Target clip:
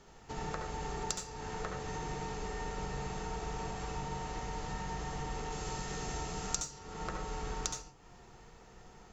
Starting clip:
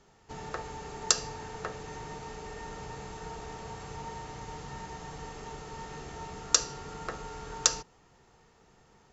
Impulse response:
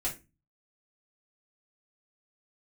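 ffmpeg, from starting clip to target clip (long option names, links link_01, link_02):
-filter_complex "[0:a]asettb=1/sr,asplit=3[link_01][link_02][link_03];[link_01]atrim=end=5.524[link_04];[link_02]atrim=start=5.52:end=6.79,asetpts=PTS-STARTPTS,afade=type=in:duration=0.004:curve=qsin,afade=type=out:start_time=1.266:duration=0.004:curve=qsin,highshelf=frequency=4900:gain=10.5[link_05];[link_03]atrim=start=6.786[link_06];[link_04][link_05]acrossfade=duration=0.004:curve1=hsin:curve2=qsin[link_07];[link_07][link_06]acrossfade=duration=0.004:curve1=qsin:curve2=hsin,acompressor=threshold=-41dB:ratio=4,asplit=2[link_08][link_09];[1:a]atrim=start_sample=2205,adelay=67[link_10];[link_09][link_10]afir=irnorm=-1:irlink=0,volume=-7dB[link_11];[link_08][link_11]amix=inputs=2:normalize=0,volume=3dB"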